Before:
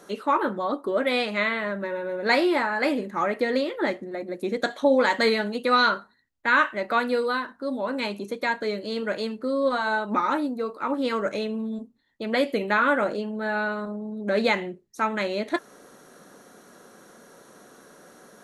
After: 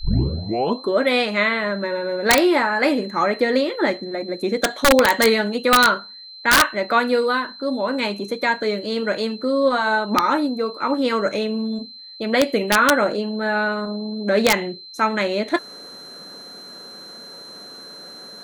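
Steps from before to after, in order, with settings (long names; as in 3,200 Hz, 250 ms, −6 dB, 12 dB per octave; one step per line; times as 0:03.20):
turntable start at the beginning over 0.88 s
wrap-around overflow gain 11.5 dB
steady tone 4,100 Hz −43 dBFS
level +5.5 dB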